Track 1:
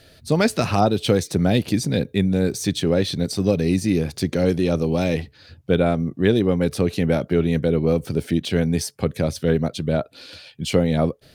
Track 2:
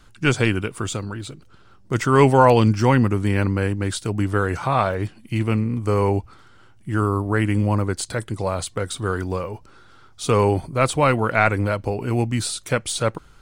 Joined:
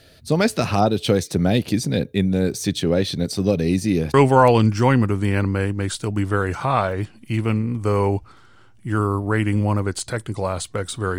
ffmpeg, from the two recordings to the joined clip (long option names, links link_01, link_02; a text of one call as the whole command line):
ffmpeg -i cue0.wav -i cue1.wav -filter_complex "[0:a]apad=whole_dur=11.18,atrim=end=11.18,atrim=end=4.142[link_01];[1:a]atrim=start=2.158:end=9.2[link_02];[link_01][link_02]acrossfade=duration=0.004:curve1=hsin:curve2=hsin" out.wav